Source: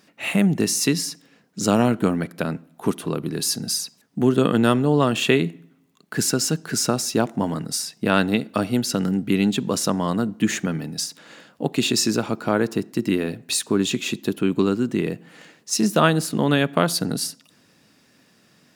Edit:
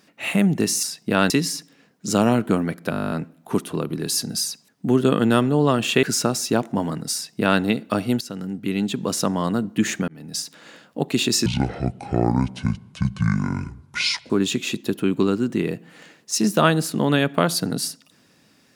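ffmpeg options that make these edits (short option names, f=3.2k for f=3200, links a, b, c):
-filter_complex "[0:a]asplit=18[a][b][c][d][e][f][g][h][i][j][k][l][m][n][o][p][q][r];[a]atrim=end=0.832[s];[b]atrim=start=7.778:end=8.252[t];[c]atrim=start=0.828:end=2.462[u];[d]atrim=start=2.438:end=2.462[v];[e]atrim=start=2.438:end=2.462[w];[f]atrim=start=2.438:end=2.462[x];[g]atrim=start=2.438:end=2.462[y];[h]atrim=start=2.438:end=2.462[z];[i]atrim=start=2.438:end=2.462[aa];[j]atrim=start=2.438:end=2.462[ab];[k]atrim=start=2.438:end=2.462[ac];[l]atrim=start=2.438:end=2.462[ad];[m]atrim=start=2.438:end=5.362[ae];[n]atrim=start=6.668:end=8.85,asetpts=PTS-STARTPTS,afade=t=out:st=2.178:d=0.004:c=hsin:silence=0.237137[af];[o]atrim=start=8.85:end=10.72,asetpts=PTS-STARTPTS,afade=t=in:d=1.06:silence=0.237137,afade=t=out:st=1.866:d=0.004:c=hsin[ag];[p]atrim=start=10.72:end=12.104,asetpts=PTS-STARTPTS,afade=t=in:d=0.33[ah];[q]atrim=start=12.1:end=13.69,asetpts=PTS-STARTPTS,asetrate=24696,aresample=44100,atrim=end_sample=125212,asetpts=PTS-STARTPTS[ai];[r]atrim=start=13.686[aj];[s][t]acrossfade=d=0.004:c1=hsin:c2=hsin[ak];[ak][u]acrossfade=d=0.004:c1=hsin:c2=hsin[al];[al][v]acrossfade=d=0.004:c1=hsin:c2=hsin[am];[am][w]acrossfade=d=0.004:c1=hsin:c2=hsin[an];[an][x]acrossfade=d=0.004:c1=hsin:c2=hsin[ao];[ao][y]acrossfade=d=0.004:c1=hsin:c2=hsin[ap];[ap][z]acrossfade=d=0.004:c1=hsin:c2=hsin[aq];[aq][aa]acrossfade=d=0.004:c1=hsin:c2=hsin[ar];[ar][ab]acrossfade=d=0.004:c1=hsin:c2=hsin[as];[as][ac]acrossfade=d=0.004:c1=hsin:c2=hsin[at];[at][ad]acrossfade=d=0.004:c1=hsin:c2=hsin[au];[au][ae]acrossfade=d=0.004:c1=hsin:c2=hsin[av];[af][ag][ah]concat=n=3:v=0:a=1[aw];[av][aw]acrossfade=d=0.004:c1=hsin:c2=hsin[ax];[ax][ai]acrossfade=d=0.004:c1=hsin:c2=hsin[ay];[ay][aj]acrossfade=d=0.004:c1=hsin:c2=hsin"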